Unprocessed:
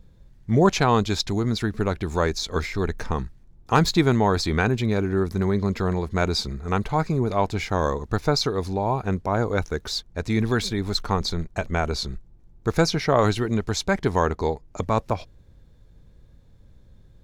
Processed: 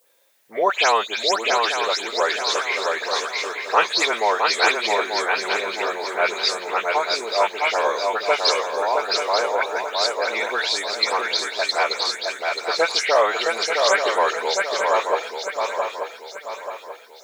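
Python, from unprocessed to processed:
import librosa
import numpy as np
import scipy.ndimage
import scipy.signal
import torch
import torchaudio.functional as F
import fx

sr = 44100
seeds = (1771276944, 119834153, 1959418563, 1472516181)

p1 = fx.spec_delay(x, sr, highs='late', ms=147)
p2 = scipy.signal.sosfilt(scipy.signal.ellip(3, 1.0, 70, [530.0, 9300.0], 'bandpass', fs=sr, output='sos'), p1)
p3 = fx.peak_eq(p2, sr, hz=2600.0, db=6.5, octaves=1.1)
p4 = fx.dmg_noise_colour(p3, sr, seeds[0], colour='blue', level_db=-68.0)
p5 = p4 + fx.echo_swing(p4, sr, ms=885, ratio=3, feedback_pct=41, wet_db=-3.5, dry=0)
y = F.gain(torch.from_numpy(p5), 4.0).numpy()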